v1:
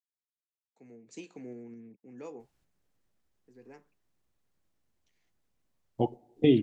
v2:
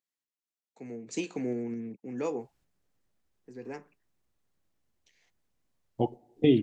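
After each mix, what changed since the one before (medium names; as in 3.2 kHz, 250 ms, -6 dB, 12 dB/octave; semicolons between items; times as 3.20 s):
first voice +11.5 dB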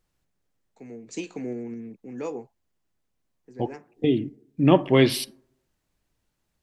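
second voice: entry -2.40 s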